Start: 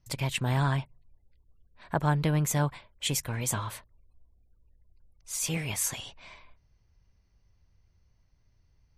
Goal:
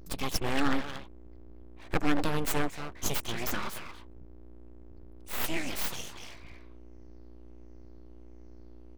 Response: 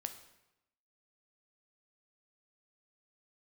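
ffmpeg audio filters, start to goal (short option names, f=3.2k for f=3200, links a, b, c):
-filter_complex "[0:a]afftfilt=real='re*pow(10,10/40*sin(2*PI*(0.58*log(max(b,1)*sr/1024/100)/log(2)-(-1.4)*(pts-256)/sr)))':imag='im*pow(10,10/40*sin(2*PI*(0.58*log(max(b,1)*sr/1024/100)/log(2)-(-1.4)*(pts-256)/sr)))':win_size=1024:overlap=0.75,aeval=exprs='val(0)+0.00501*(sin(2*PI*60*n/s)+sin(2*PI*2*60*n/s)/2+sin(2*PI*3*60*n/s)/3+sin(2*PI*4*60*n/s)/4+sin(2*PI*5*60*n/s)/5)':c=same,asplit=2[a][b];[b]adelay=230,highpass=300,lowpass=3.4k,asoftclip=type=hard:threshold=-22dB,volume=-6dB[c];[a][c]amix=inputs=2:normalize=0,aeval=exprs='abs(val(0))':c=same"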